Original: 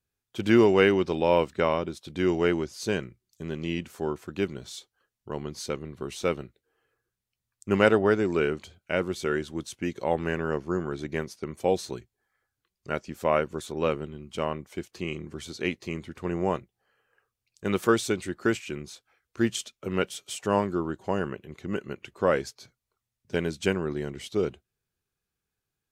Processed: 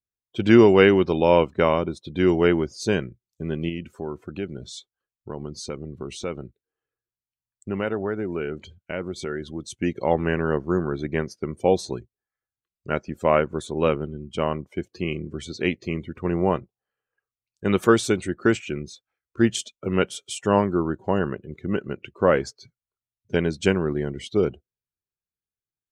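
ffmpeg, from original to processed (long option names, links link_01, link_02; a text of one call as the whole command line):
ffmpeg -i in.wav -filter_complex "[0:a]asettb=1/sr,asplit=3[link_01][link_02][link_03];[link_01]atrim=end=3.694[link_04];[link_02]atrim=start=3.69:end=9.7,asetpts=PTS-STARTPTS,afade=type=in:duration=0.004:curve=qsin,afade=type=out:start_time=6.006:duration=0.004:curve=qsin,acompressor=threshold=-36dB:ratio=2:attack=3.2:release=140:knee=1:detection=peak[link_05];[link_03]atrim=start=9.696[link_06];[link_04][link_05]acrossfade=duration=0.004:curve1=hsin:curve2=qsin[link_07];[link_07][link_06]acrossfade=duration=0.004:curve1=qsin:curve2=hsin,lowshelf=frequency=340:gain=3,afftdn=noise_reduction=20:noise_floor=-47,volume=4dB" out.wav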